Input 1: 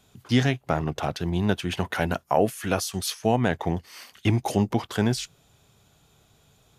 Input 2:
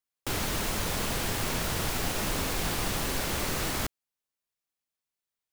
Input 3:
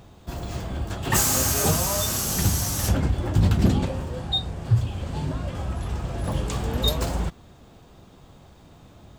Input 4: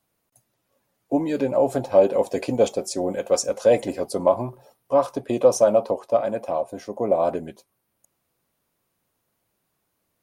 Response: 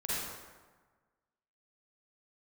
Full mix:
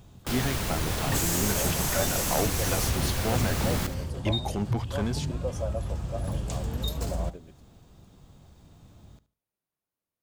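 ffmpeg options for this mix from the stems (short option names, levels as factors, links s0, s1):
-filter_complex "[0:a]aeval=exprs='clip(val(0),-1,0.15)':c=same,volume=0.501[s0];[1:a]volume=0.841,asplit=2[s1][s2];[s2]volume=0.251[s3];[2:a]bass=f=250:g=7,treble=f=4000:g=6,acompressor=threshold=0.158:ratio=6,volume=0.355,asplit=2[s4][s5];[s5]volume=0.141[s6];[3:a]volume=0.133[s7];[s3][s6]amix=inputs=2:normalize=0,aecho=0:1:74|148|222|296:1|0.24|0.0576|0.0138[s8];[s0][s1][s4][s7][s8]amix=inputs=5:normalize=0"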